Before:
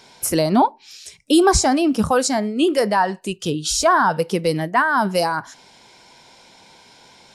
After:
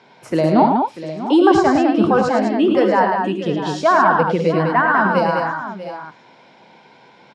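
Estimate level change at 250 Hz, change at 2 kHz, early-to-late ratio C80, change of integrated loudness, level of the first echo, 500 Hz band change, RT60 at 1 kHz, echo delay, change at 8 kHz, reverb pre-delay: +3.5 dB, +2.5 dB, none, +2.5 dB, -11.0 dB, +3.5 dB, none, 77 ms, under -15 dB, none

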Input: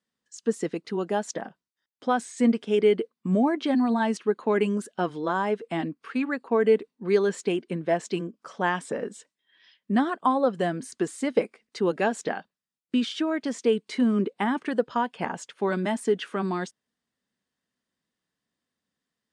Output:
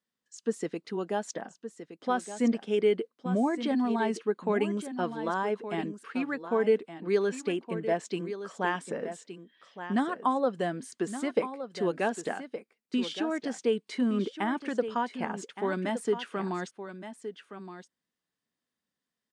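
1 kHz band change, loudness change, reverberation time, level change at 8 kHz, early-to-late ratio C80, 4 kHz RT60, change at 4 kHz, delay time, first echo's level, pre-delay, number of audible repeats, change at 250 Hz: -4.0 dB, -4.5 dB, none, -3.5 dB, none, none, -3.5 dB, 1.168 s, -11.0 dB, none, 1, -4.5 dB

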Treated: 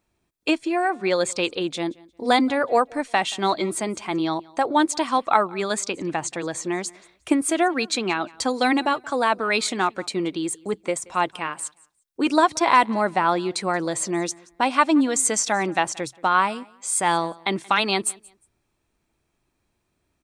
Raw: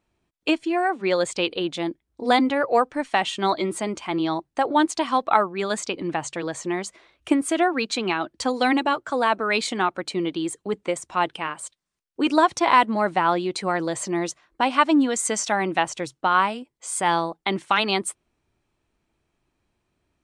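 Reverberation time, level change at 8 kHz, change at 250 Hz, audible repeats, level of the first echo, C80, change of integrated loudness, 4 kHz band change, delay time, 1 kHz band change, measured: none, +4.5 dB, 0.0 dB, 1, -24.0 dB, none, +0.5 dB, +0.5 dB, 0.178 s, 0.0 dB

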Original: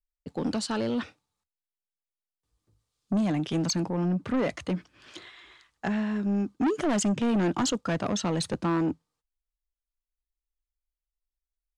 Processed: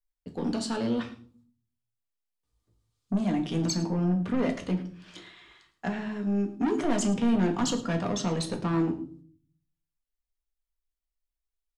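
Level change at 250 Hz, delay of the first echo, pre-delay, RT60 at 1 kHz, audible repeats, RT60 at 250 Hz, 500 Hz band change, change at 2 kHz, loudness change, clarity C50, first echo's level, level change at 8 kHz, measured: 0.0 dB, 0.109 s, 4 ms, 0.40 s, 1, 0.75 s, -1.0 dB, -2.0 dB, -0.5 dB, 11.5 dB, -18.0 dB, -2.0 dB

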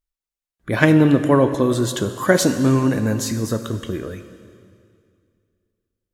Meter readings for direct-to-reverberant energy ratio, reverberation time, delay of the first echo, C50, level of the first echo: 9.0 dB, 2.2 s, none, 10.0 dB, none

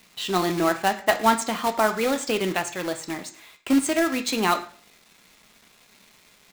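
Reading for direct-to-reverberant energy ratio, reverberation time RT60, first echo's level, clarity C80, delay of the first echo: 6.0 dB, 0.45 s, -21.5 dB, 16.5 dB, 0.106 s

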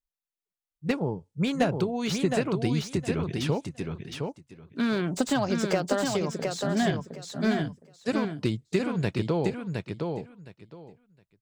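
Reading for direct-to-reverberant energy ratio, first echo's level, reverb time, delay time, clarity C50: none, -4.5 dB, none, 0.714 s, none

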